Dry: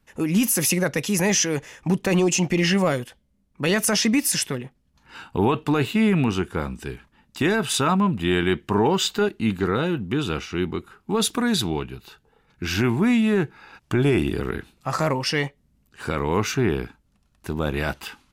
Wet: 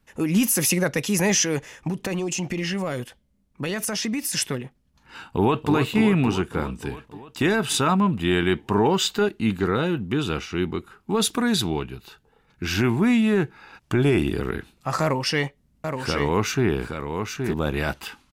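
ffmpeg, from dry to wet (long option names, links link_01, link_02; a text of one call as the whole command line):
ffmpeg -i in.wav -filter_complex "[0:a]asettb=1/sr,asplit=3[link_01][link_02][link_03];[link_01]atrim=end=1.884[link_04];[link_02]atrim=start=1.88:end=4.37,asetpts=PTS-STARTPTS,afade=type=in:duration=0.004:curve=qsin,afade=type=out:start_time=2.486:duration=0.004:curve=qsin,acompressor=threshold=-23dB:ratio=6:attack=3.2:release=140:knee=1:detection=peak[link_05];[link_03]atrim=start=4.366[link_06];[link_04][link_05]acrossfade=duration=0.004:curve1=hsin:curve2=qsin[link_07];[link_07][link_06]acrossfade=duration=0.004:curve1=qsin:curve2=hsin,asplit=2[link_08][link_09];[link_09]afade=type=in:start_time=5.25:duration=0.01,afade=type=out:start_time=5.72:duration=0.01,aecho=0:1:290|580|870|1160|1450|1740|2030|2320|2610|2900|3190:0.421697|0.295188|0.206631|0.144642|0.101249|0.0708745|0.0496122|0.0347285|0.02431|0.017017|0.0119119[link_10];[link_08][link_10]amix=inputs=2:normalize=0,asettb=1/sr,asplit=3[link_11][link_12][link_13];[link_11]atrim=end=15.024[link_14];[link_12]atrim=start=15.02:end=17.54,asetpts=PTS-STARTPTS,afade=type=in:duration=0.004:curve=qsin,afade=type=out:start_time=2.516:duration=0.004:curve=qsin,aecho=1:1:821:0.501,atrim=end_sample=111132[link_15];[link_13]atrim=start=17.536[link_16];[link_14][link_15]acrossfade=duration=0.004:curve1=hsin:curve2=qsin[link_17];[link_17][link_16]acrossfade=duration=0.004:curve1=qsin:curve2=hsin" out.wav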